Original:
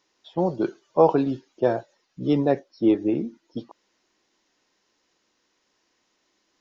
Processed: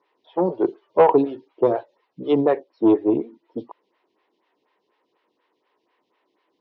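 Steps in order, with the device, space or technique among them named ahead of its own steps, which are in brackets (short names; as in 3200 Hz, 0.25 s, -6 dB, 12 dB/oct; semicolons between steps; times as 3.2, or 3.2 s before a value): vibe pedal into a guitar amplifier (photocell phaser 4.1 Hz; tube stage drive 13 dB, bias 0.35; speaker cabinet 110–3600 Hz, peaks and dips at 150 Hz -4 dB, 210 Hz -4 dB, 430 Hz +6 dB, 970 Hz +6 dB, 1500 Hz -4 dB); 1.75–2.41 dynamic EQ 3800 Hz, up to +6 dB, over -52 dBFS, Q 0.93; gain +5 dB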